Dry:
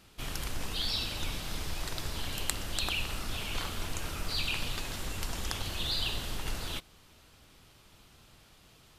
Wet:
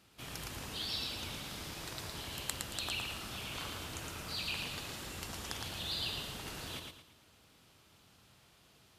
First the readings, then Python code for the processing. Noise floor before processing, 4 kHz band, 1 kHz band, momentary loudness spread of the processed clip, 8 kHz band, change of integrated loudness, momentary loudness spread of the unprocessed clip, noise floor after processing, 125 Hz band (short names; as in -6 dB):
-59 dBFS, -4.5 dB, -4.5 dB, 7 LU, -4.5 dB, -5.0 dB, 6 LU, -65 dBFS, -7.0 dB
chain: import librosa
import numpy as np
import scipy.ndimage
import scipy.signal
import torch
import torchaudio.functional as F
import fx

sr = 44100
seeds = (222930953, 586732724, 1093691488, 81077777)

p1 = scipy.signal.sosfilt(scipy.signal.butter(2, 80.0, 'highpass', fs=sr, output='sos'), x)
p2 = p1 + fx.echo_feedback(p1, sr, ms=113, feedback_pct=33, wet_db=-4, dry=0)
y = p2 * 10.0 ** (-6.0 / 20.0)